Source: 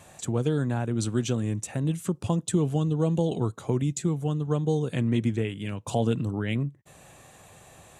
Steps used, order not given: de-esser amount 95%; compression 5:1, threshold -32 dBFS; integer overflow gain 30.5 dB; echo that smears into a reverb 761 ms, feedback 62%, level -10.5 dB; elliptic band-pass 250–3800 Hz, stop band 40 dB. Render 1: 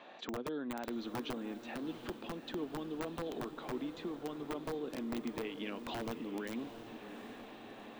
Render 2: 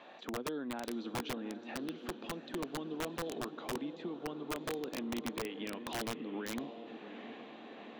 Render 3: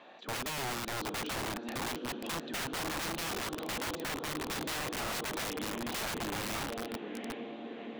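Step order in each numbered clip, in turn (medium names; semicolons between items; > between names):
compression > elliptic band-pass > integer overflow > de-esser > echo that smears into a reverb; compression > echo that smears into a reverb > de-esser > elliptic band-pass > integer overflow; echo that smears into a reverb > de-esser > elliptic band-pass > integer overflow > compression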